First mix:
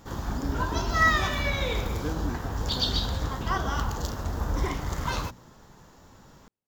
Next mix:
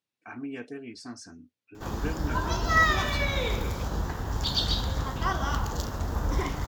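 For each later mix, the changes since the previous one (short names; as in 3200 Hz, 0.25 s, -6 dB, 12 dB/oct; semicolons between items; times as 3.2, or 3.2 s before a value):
speech: add weighting filter D; background: entry +1.75 s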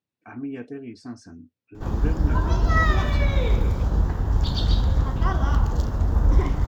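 master: add tilt -2.5 dB/oct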